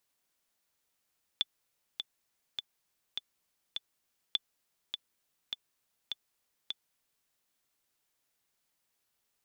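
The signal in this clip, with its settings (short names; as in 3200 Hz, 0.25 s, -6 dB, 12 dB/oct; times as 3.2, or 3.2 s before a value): metronome 102 bpm, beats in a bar 5, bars 2, 3480 Hz, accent 7 dB -15 dBFS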